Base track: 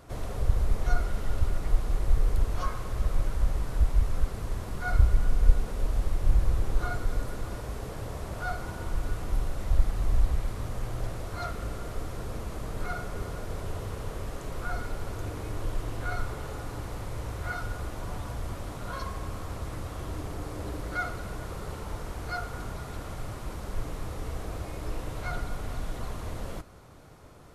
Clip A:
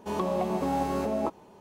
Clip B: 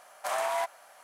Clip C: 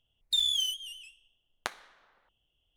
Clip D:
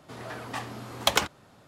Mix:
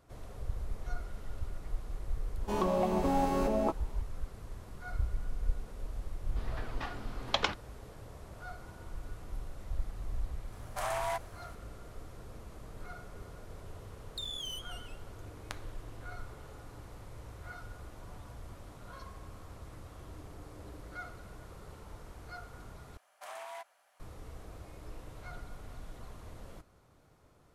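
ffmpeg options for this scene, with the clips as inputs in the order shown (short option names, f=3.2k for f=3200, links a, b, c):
-filter_complex "[2:a]asplit=2[a][b];[0:a]volume=-12.5dB[c];[4:a]lowpass=f=5.2k:w=0.5412,lowpass=f=5.2k:w=1.3066[d];[3:a]acompressor=threshold=-30dB:ratio=6:attack=3.2:release=140:knee=1:detection=peak[e];[b]equalizer=f=2.9k:w=1.1:g=3.5[f];[c]asplit=2[g][h];[g]atrim=end=22.974[i];[f]atrim=end=1.03,asetpts=PTS-STARTPTS,volume=-15.5dB[j];[h]atrim=start=23.996[k];[1:a]atrim=end=1.6,asetpts=PTS-STARTPTS,volume=-1.5dB,afade=t=in:d=0.004:c=hsin,afade=t=out:st=1.596:d=0.004:c=hsin,adelay=2420[l];[d]atrim=end=1.67,asetpts=PTS-STARTPTS,volume=-6.5dB,afade=t=in:d=0.004:c=hsin,afade=t=out:st=1.666:d=0.004:c=hsin,adelay=6270[m];[a]atrim=end=1.03,asetpts=PTS-STARTPTS,volume=-4.5dB,afade=t=in:d=0.004:c=hsin,afade=t=out:st=1.026:d=0.004:c=hsin,adelay=10520[n];[e]atrim=end=2.76,asetpts=PTS-STARTPTS,volume=-7dB,afade=t=in:d=0.004:c=hsin,afade=t=out:st=2.756:d=0.004:c=hsin,adelay=13850[o];[i][j]acrossfade=d=0.004:c1=hsin:c2=hsin[p];[p][k]acrossfade=d=0.004:c1=hsin:c2=hsin[q];[q][l][m][n][o]amix=inputs=5:normalize=0"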